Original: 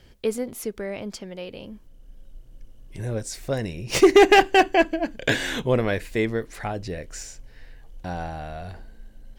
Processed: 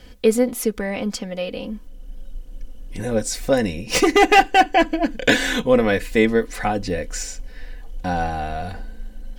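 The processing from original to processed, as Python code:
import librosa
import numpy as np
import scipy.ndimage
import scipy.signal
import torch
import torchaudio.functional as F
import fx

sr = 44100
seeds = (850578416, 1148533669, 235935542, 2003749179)

y = x + 0.7 * np.pad(x, (int(4.0 * sr / 1000.0), 0))[:len(x)]
y = fx.rider(y, sr, range_db=3, speed_s=0.5)
y = y * 10.0 ** (3.5 / 20.0)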